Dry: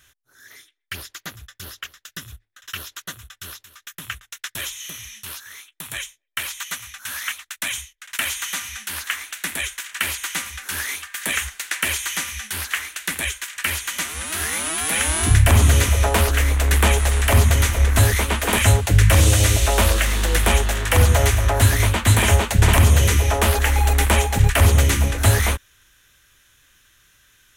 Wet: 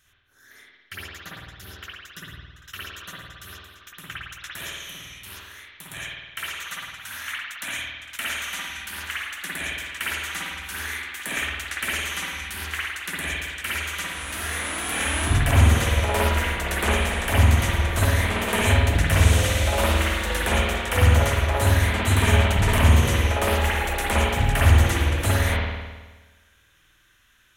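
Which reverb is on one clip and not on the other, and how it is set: spring tank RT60 1.3 s, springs 52 ms, chirp 35 ms, DRR -6 dB; trim -8.5 dB

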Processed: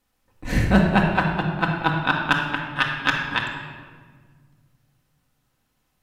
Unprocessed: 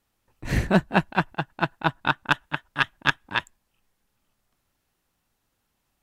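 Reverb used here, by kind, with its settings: simulated room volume 1900 m³, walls mixed, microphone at 2 m

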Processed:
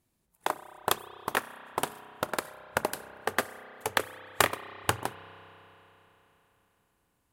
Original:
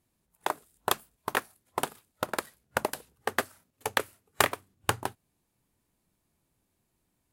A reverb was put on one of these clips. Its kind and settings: spring tank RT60 3.7 s, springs 31 ms, chirp 70 ms, DRR 13 dB

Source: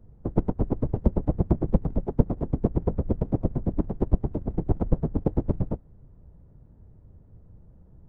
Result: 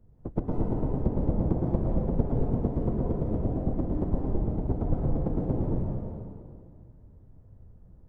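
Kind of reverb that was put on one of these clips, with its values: plate-style reverb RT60 2.2 s, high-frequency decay 0.9×, pre-delay 115 ms, DRR -3.5 dB; trim -6.5 dB

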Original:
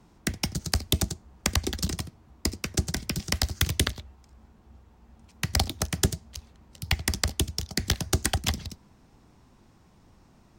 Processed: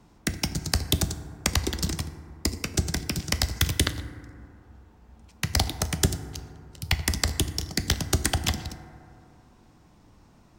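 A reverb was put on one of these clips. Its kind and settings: FDN reverb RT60 2.5 s, low-frequency decay 0.9×, high-frequency decay 0.3×, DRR 10 dB; trim +1 dB

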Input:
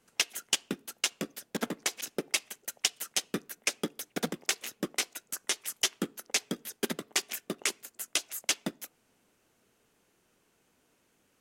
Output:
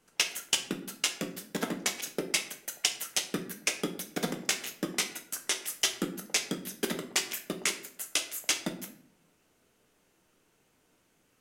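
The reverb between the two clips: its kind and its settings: simulated room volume 85 m³, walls mixed, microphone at 0.45 m

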